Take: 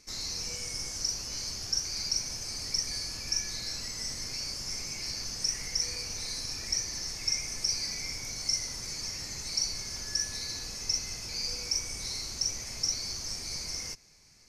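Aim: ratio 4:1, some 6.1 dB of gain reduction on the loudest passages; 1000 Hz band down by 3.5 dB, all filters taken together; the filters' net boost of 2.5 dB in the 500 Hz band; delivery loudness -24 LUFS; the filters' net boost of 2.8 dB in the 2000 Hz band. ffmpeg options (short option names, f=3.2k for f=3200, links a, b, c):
-af "equalizer=f=500:t=o:g=4.5,equalizer=f=1k:t=o:g=-7.5,equalizer=f=2k:t=o:g=4.5,acompressor=threshold=-32dB:ratio=4,volume=10.5dB"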